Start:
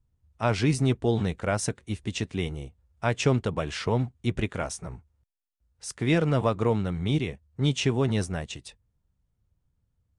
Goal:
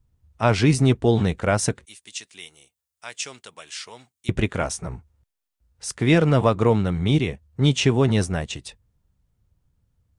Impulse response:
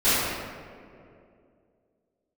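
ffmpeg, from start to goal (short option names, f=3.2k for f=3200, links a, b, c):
-filter_complex "[0:a]asettb=1/sr,asplit=3[a][b][c];[a]atrim=end=1.854[d];[b]atrim=start=1.85:end=4.29,asetpts=PTS-STARTPTS,afade=t=in:d=0.004:c=qsin,afade=t=out:st=2.436:d=0.004:c=qsin,aderivative[e];[c]atrim=start=4.286[f];[d][e]acrossfade=d=0.004:c1=hsin:c2=qsin[g];[g][f]acrossfade=d=0.004:c1=qsin:c2=hsin,volume=6dB"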